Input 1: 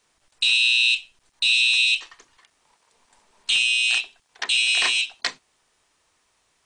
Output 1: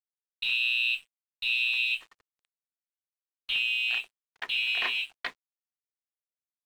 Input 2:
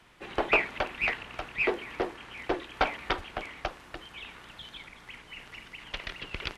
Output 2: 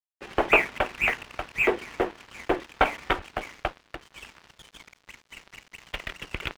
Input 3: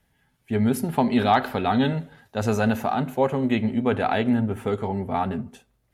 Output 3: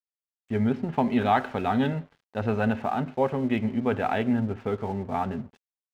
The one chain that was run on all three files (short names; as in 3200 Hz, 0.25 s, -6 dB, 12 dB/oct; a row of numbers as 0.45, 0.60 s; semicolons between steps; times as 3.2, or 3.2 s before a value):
LPF 3200 Hz 24 dB/oct; crossover distortion -46.5 dBFS; match loudness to -27 LUFS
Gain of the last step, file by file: -5.5, +5.5, -2.5 dB